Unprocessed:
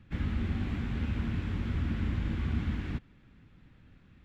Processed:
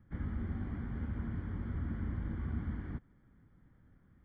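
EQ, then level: Savitzky-Golay filter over 41 samples; -6.0 dB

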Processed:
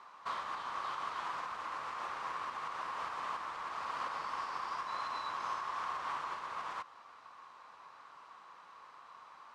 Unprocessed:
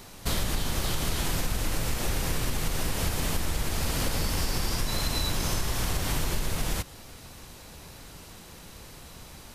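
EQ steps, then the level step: band-pass filter 1.1 kHz, Q 6; distance through air 77 m; tilt EQ +2 dB/octave; +7.0 dB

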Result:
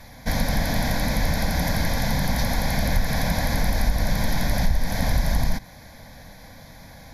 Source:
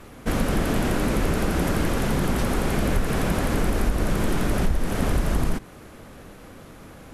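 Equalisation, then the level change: peaking EQ 4.3 kHz +3.5 dB 2.4 oct; treble shelf 5.6 kHz +7.5 dB; static phaser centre 1.9 kHz, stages 8; +2.0 dB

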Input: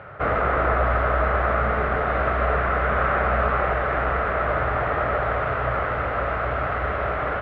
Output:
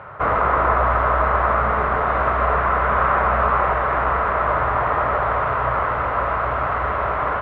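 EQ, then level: peaking EQ 1 kHz +12.5 dB 0.44 oct; 0.0 dB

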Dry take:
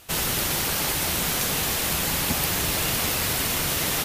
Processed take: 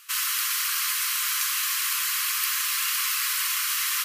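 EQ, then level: brick-wall FIR high-pass 1 kHz; band-stop 3.6 kHz, Q 15; 0.0 dB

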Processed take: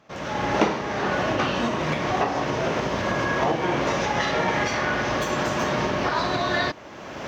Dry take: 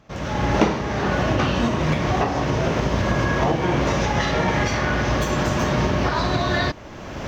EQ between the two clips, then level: high-pass 340 Hz 6 dB/octave; treble shelf 5.2 kHz -4 dB; 0.0 dB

